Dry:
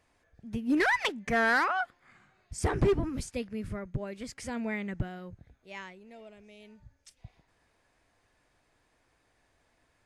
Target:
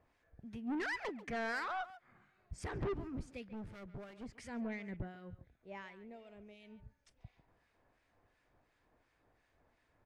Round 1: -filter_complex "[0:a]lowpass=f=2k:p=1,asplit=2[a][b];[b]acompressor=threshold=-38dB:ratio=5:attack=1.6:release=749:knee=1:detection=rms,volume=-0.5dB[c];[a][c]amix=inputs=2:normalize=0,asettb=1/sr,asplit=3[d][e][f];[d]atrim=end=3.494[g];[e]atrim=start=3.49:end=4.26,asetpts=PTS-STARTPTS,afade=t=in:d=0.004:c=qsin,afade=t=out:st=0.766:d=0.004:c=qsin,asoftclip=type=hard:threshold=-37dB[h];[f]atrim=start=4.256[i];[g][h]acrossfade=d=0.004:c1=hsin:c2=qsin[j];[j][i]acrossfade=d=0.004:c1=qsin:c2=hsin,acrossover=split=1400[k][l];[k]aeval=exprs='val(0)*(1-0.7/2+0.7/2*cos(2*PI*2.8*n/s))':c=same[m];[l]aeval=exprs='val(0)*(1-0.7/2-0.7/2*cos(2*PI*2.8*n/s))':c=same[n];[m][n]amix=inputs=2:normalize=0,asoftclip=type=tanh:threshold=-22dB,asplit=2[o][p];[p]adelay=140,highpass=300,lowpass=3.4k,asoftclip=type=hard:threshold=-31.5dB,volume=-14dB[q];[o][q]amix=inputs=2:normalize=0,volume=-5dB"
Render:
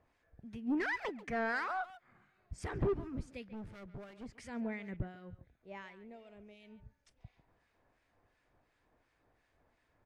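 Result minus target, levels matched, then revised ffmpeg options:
soft clip: distortion -8 dB
-filter_complex "[0:a]lowpass=f=2k:p=1,asplit=2[a][b];[b]acompressor=threshold=-38dB:ratio=5:attack=1.6:release=749:knee=1:detection=rms,volume=-0.5dB[c];[a][c]amix=inputs=2:normalize=0,asettb=1/sr,asplit=3[d][e][f];[d]atrim=end=3.494[g];[e]atrim=start=3.49:end=4.26,asetpts=PTS-STARTPTS,afade=t=in:d=0.004:c=qsin,afade=t=out:st=0.766:d=0.004:c=qsin,asoftclip=type=hard:threshold=-37dB[h];[f]atrim=start=4.256[i];[g][h]acrossfade=d=0.004:c1=hsin:c2=qsin[j];[j][i]acrossfade=d=0.004:c1=qsin:c2=hsin,acrossover=split=1400[k][l];[k]aeval=exprs='val(0)*(1-0.7/2+0.7/2*cos(2*PI*2.8*n/s))':c=same[m];[l]aeval=exprs='val(0)*(1-0.7/2-0.7/2*cos(2*PI*2.8*n/s))':c=same[n];[m][n]amix=inputs=2:normalize=0,asoftclip=type=tanh:threshold=-29.5dB,asplit=2[o][p];[p]adelay=140,highpass=300,lowpass=3.4k,asoftclip=type=hard:threshold=-31.5dB,volume=-14dB[q];[o][q]amix=inputs=2:normalize=0,volume=-5dB"

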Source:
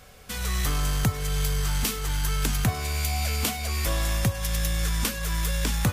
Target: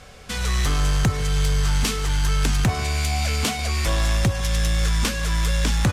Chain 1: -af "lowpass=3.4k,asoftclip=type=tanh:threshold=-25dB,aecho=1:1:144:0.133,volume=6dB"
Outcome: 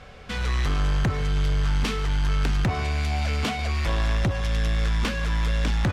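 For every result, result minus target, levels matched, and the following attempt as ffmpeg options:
8000 Hz band -10.5 dB; soft clip: distortion +7 dB
-af "lowpass=7.9k,asoftclip=type=tanh:threshold=-25dB,aecho=1:1:144:0.133,volume=6dB"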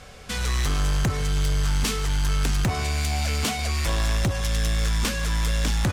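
soft clip: distortion +8 dB
-af "lowpass=7.9k,asoftclip=type=tanh:threshold=-18.5dB,aecho=1:1:144:0.133,volume=6dB"

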